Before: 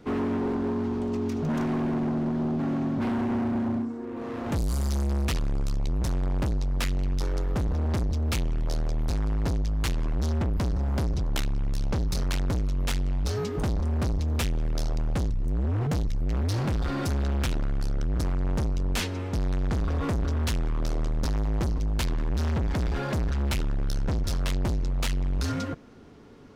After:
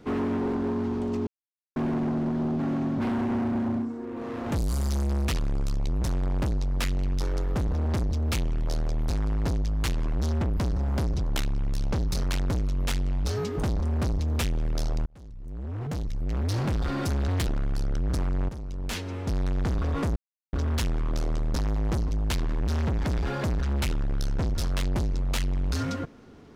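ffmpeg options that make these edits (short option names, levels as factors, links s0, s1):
-filter_complex "[0:a]asplit=8[s0][s1][s2][s3][s4][s5][s6][s7];[s0]atrim=end=1.27,asetpts=PTS-STARTPTS,afade=t=out:st=1.266:d=0.004:c=hsin[s8];[s1]atrim=start=1.27:end=1.76,asetpts=PTS-STARTPTS,volume=0[s9];[s2]atrim=start=1.76:end=15.06,asetpts=PTS-STARTPTS,afade=t=in:d=0.004:c=hsin,afade=t=out:st=13.296:d=0.004:c=hsin[s10];[s3]atrim=start=15.06:end=17.284,asetpts=PTS-STARTPTS,afade=t=in:d=1.52[s11];[s4]atrim=start=17.28:end=17.53,asetpts=PTS-STARTPTS,asetrate=58212,aresample=44100,atrim=end_sample=8352,asetpts=PTS-STARTPTS[s12];[s5]atrim=start=17.526:end=18.55,asetpts=PTS-STARTPTS,afade=t=out:st=1.02:d=0.004:c=hsin:silence=0.223872[s13];[s6]atrim=start=18.55:end=20.22,asetpts=PTS-STARTPTS,afade=t=in:d=0.86:silence=0.223872,afade=t=out:st=1.666:d=0.004:c=hsin,apad=pad_dur=0.37[s14];[s7]atrim=start=20.22,asetpts=PTS-STARTPTS,afade=t=in:d=0.004:c=hsin[s15];[s8][s9][s10][s11]concat=n=4:v=0:a=1[s16];[s16][s12]acrossfade=d=0.004:c1=hsin:c2=hsin[s17];[s13][s14][s15]concat=n=3:v=0:a=1[s18];[s17][s18]acrossfade=d=0.004:c1=hsin:c2=hsin"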